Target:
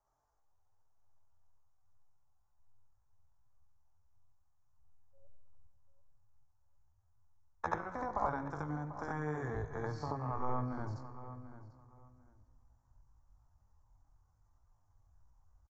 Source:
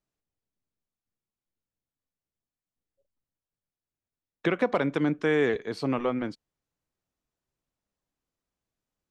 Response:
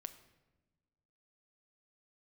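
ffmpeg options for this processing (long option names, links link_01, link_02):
-filter_complex "[0:a]asubboost=boost=10.5:cutoff=150,acrossover=split=140|4500[link_01][link_02][link_03];[link_01]acompressor=threshold=-38dB:ratio=4[link_04];[link_02]acompressor=threshold=-32dB:ratio=4[link_05];[link_03]acompressor=threshold=-55dB:ratio=4[link_06];[link_04][link_05][link_06]amix=inputs=3:normalize=0,aresample=16000,aresample=44100,acompressor=threshold=-39dB:ratio=4,asplit=2[link_07][link_08];[1:a]atrim=start_sample=2205,adelay=40[link_09];[link_08][link_09]afir=irnorm=-1:irlink=0,volume=7dB[link_10];[link_07][link_10]amix=inputs=2:normalize=0,atempo=0.58,firequalizer=gain_entry='entry(100,0);entry(160,-16);entry(850,12);entry(2800,-27);entry(5700,-4)':delay=0.05:min_phase=1,asplit=2[link_11][link_12];[link_12]adelay=742,lowpass=frequency=3200:poles=1,volume=-13.5dB,asplit=2[link_13][link_14];[link_14]adelay=742,lowpass=frequency=3200:poles=1,volume=0.21[link_15];[link_11][link_13][link_15]amix=inputs=3:normalize=0,volume=4dB"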